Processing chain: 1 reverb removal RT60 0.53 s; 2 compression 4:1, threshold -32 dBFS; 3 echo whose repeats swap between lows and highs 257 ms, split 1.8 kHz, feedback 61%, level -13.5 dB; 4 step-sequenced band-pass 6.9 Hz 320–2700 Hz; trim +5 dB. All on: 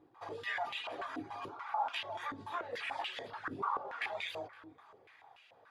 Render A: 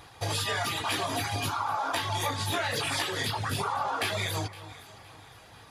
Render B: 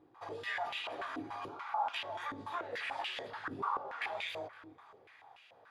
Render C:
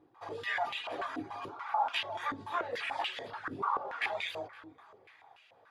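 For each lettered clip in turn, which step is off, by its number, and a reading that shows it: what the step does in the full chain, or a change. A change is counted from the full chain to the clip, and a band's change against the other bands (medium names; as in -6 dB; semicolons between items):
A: 4, 8 kHz band +18.0 dB; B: 1, momentary loudness spread change +13 LU; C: 2, mean gain reduction 2.5 dB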